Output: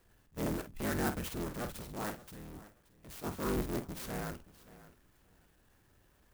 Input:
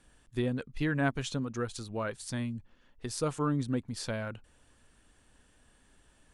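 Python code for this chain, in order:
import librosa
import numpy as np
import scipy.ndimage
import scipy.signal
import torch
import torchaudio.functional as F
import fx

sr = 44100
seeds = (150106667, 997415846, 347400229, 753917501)

p1 = fx.cycle_switch(x, sr, every=3, mode='inverted')
p2 = scipy.signal.sosfilt(scipy.signal.butter(2, 7900.0, 'lowpass', fs=sr, output='sos'), p1)
p3 = fx.level_steps(p2, sr, step_db=22, at=(2.15, 3.24))
p4 = fx.transient(p3, sr, attack_db=-7, sustain_db=1)
p5 = fx.doubler(p4, sr, ms=49.0, db=-9.5)
p6 = p5 + fx.echo_feedback(p5, sr, ms=576, feedback_pct=17, wet_db=-18.0, dry=0)
p7 = fx.clock_jitter(p6, sr, seeds[0], jitter_ms=0.061)
y = p7 * 10.0 ** (-3.5 / 20.0)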